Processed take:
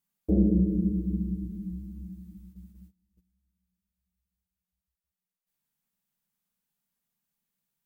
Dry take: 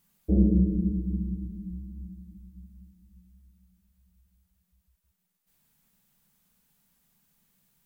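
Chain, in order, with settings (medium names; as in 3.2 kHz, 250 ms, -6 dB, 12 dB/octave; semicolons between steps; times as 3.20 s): gate -50 dBFS, range -19 dB; bass shelf 140 Hz -8.5 dB; in parallel at -2 dB: compression, threshold -29 dBFS, peak gain reduction 10 dB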